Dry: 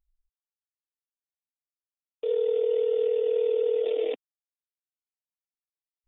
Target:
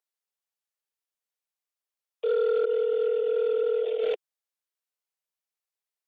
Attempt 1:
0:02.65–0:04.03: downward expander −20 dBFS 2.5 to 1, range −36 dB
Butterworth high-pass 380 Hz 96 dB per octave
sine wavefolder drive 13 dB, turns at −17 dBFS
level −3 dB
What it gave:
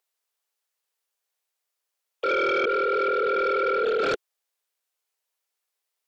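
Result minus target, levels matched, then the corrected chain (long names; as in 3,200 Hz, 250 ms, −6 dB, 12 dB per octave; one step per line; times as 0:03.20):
sine wavefolder: distortion +30 dB
0:02.65–0:04.03: downward expander −20 dBFS 2.5 to 1, range −36 dB
Butterworth high-pass 380 Hz 96 dB per octave
sine wavefolder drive 3 dB, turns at −17 dBFS
level −3 dB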